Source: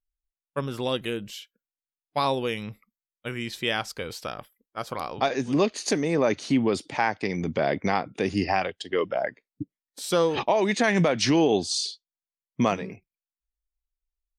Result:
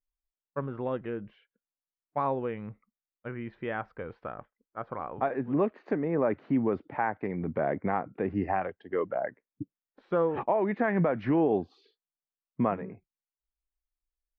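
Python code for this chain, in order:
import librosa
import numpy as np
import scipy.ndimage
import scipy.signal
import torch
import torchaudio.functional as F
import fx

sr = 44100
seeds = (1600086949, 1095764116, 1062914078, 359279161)

y = scipy.signal.sosfilt(scipy.signal.butter(4, 1700.0, 'lowpass', fs=sr, output='sos'), x)
y = y * 10.0 ** (-4.0 / 20.0)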